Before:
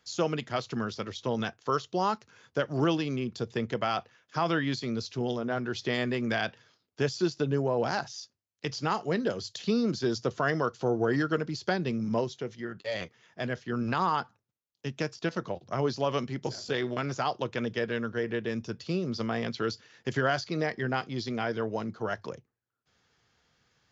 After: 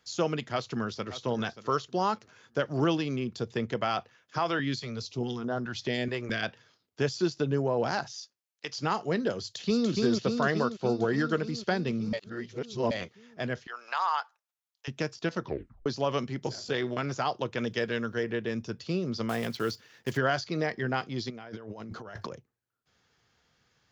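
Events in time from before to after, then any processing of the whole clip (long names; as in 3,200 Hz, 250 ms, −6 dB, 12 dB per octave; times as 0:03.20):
0:00.51–0:01.15: delay throw 580 ms, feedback 25%, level −13.5 dB
0:04.38–0:06.43: notch on a step sequencer 4.7 Hz 210–2,300 Hz
0:08.16–0:08.78: high-pass filter 790 Hz 6 dB per octave
0:09.40–0:09.89: delay throw 290 ms, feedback 75%, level −2.5 dB
0:10.63–0:11.18: expander for the loud parts, over −37 dBFS
0:12.13–0:12.91: reverse
0:13.67–0:14.88: high-pass filter 720 Hz 24 dB per octave
0:15.42: tape stop 0.44 s
0:17.59–0:18.24: high-shelf EQ 4,600 Hz +9.5 dB
0:19.29–0:20.18: one scale factor per block 5 bits
0:21.30–0:22.31: compressor whose output falls as the input rises −42 dBFS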